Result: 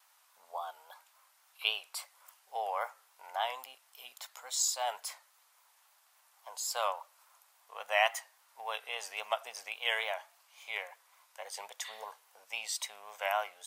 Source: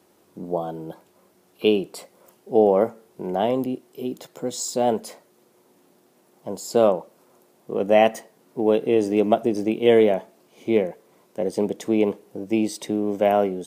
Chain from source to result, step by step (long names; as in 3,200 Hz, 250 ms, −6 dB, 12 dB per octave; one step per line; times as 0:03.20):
pitch vibrato 3.6 Hz 63 cents
inverse Chebyshev high-pass filter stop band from 360 Hz, stop band 50 dB
healed spectral selection 0:11.87–0:12.20, 1,700–4,600 Hz both
level −1 dB